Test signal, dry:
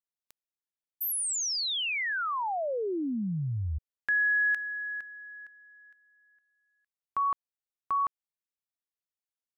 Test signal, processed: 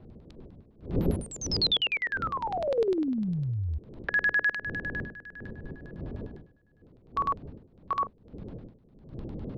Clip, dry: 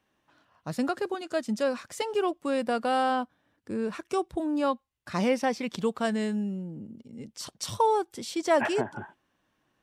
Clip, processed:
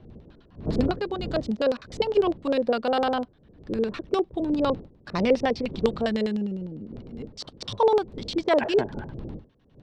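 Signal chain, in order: wind noise 210 Hz -41 dBFS; LFO low-pass square 9.9 Hz 470–4000 Hz; trim +1 dB

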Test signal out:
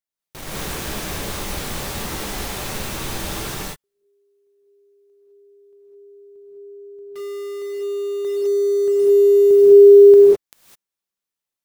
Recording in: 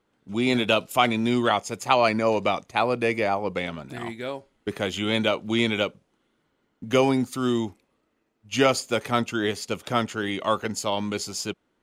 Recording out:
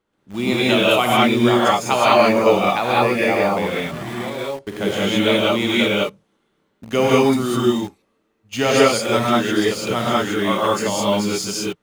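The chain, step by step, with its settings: gated-style reverb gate 230 ms rising, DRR -6.5 dB; in parallel at -7.5 dB: bit crusher 5-bit; on the sum: trim -3.5 dB

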